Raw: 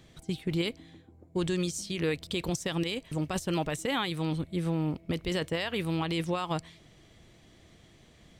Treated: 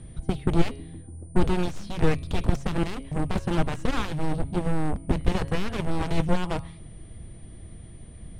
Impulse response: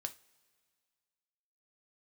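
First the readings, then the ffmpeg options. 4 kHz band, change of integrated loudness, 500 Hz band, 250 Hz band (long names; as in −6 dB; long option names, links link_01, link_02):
−3.5 dB, +3.5 dB, +2.5 dB, +3.5 dB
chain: -af "aeval=exprs='val(0)+0.00631*sin(2*PI*9000*n/s)':channel_layout=same,bandreject=frequency=137.5:width_type=h:width=4,bandreject=frequency=275:width_type=h:width=4,bandreject=frequency=412.5:width_type=h:width=4,bandreject=frequency=550:width_type=h:width=4,bandreject=frequency=687.5:width_type=h:width=4,bandreject=frequency=825:width_type=h:width=4,bandreject=frequency=962.5:width_type=h:width=4,bandreject=frequency=1100:width_type=h:width=4,bandreject=frequency=1237.5:width_type=h:width=4,bandreject=frequency=1375:width_type=h:width=4,bandreject=frequency=1512.5:width_type=h:width=4,bandreject=frequency=1650:width_type=h:width=4,bandreject=frequency=1787.5:width_type=h:width=4,bandreject=frequency=1925:width_type=h:width=4,bandreject=frequency=2062.5:width_type=h:width=4,bandreject=frequency=2200:width_type=h:width=4,bandreject=frequency=2337.5:width_type=h:width=4,bandreject=frequency=2475:width_type=h:width=4,bandreject=frequency=2612.5:width_type=h:width=4,bandreject=frequency=2750:width_type=h:width=4,bandreject=frequency=2887.5:width_type=h:width=4,bandreject=frequency=3025:width_type=h:width=4,bandreject=frequency=3162.5:width_type=h:width=4,bandreject=frequency=3300:width_type=h:width=4,bandreject=frequency=3437.5:width_type=h:width=4,bandreject=frequency=3575:width_type=h:width=4,bandreject=frequency=3712.5:width_type=h:width=4,bandreject=frequency=3850:width_type=h:width=4,bandreject=frequency=3987.5:width_type=h:width=4,bandreject=frequency=4125:width_type=h:width=4,bandreject=frequency=4262.5:width_type=h:width=4,bandreject=frequency=4400:width_type=h:width=4,bandreject=frequency=4537.5:width_type=h:width=4,bandreject=frequency=4675:width_type=h:width=4,bandreject=frequency=4812.5:width_type=h:width=4,bandreject=frequency=4950:width_type=h:width=4,aeval=exprs='0.112*(cos(1*acos(clip(val(0)/0.112,-1,1)))-cos(1*PI/2))+0.02*(cos(4*acos(clip(val(0)/0.112,-1,1)))-cos(4*PI/2))+0.0398*(cos(7*acos(clip(val(0)/0.112,-1,1)))-cos(7*PI/2))':channel_layout=same,aemphasis=mode=reproduction:type=riaa"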